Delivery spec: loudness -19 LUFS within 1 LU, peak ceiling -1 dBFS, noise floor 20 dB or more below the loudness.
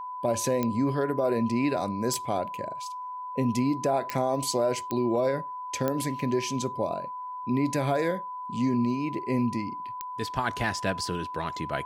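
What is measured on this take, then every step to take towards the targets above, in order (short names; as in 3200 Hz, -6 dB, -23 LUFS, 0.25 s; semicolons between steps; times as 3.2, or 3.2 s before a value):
clicks 6; steady tone 1000 Hz; tone level -34 dBFS; loudness -28.5 LUFS; peak -12.5 dBFS; loudness target -19.0 LUFS
-> de-click; notch 1000 Hz, Q 30; gain +9.5 dB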